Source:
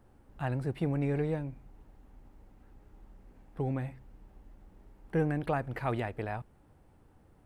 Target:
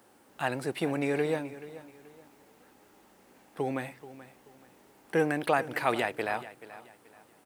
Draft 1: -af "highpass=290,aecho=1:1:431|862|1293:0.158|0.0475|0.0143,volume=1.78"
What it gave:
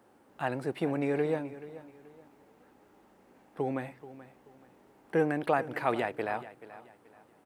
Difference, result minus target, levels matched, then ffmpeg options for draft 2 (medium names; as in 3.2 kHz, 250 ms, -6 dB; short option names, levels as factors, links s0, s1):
4 kHz band -6.5 dB
-af "highpass=290,highshelf=f=2400:g=11.5,aecho=1:1:431|862|1293:0.158|0.0475|0.0143,volume=1.78"